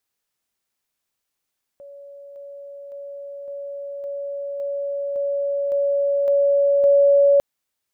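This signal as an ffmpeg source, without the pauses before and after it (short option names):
-f lavfi -i "aevalsrc='pow(10,(-38+3*floor(t/0.56))/20)*sin(2*PI*564*t)':d=5.6:s=44100"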